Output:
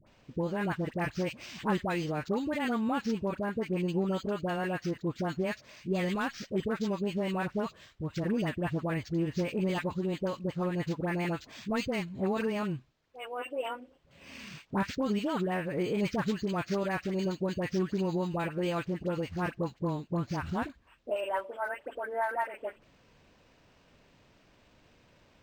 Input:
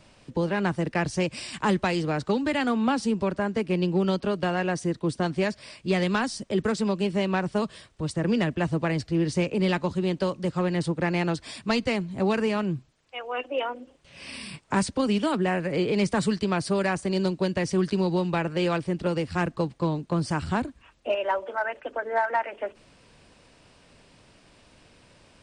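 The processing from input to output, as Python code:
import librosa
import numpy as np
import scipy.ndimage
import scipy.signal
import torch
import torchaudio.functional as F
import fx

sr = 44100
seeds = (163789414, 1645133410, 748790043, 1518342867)

y = fx.dispersion(x, sr, late='highs', ms=69.0, hz=1000.0)
y = np.interp(np.arange(len(y)), np.arange(len(y))[::4], y[::4])
y = y * 10.0 ** (-6.0 / 20.0)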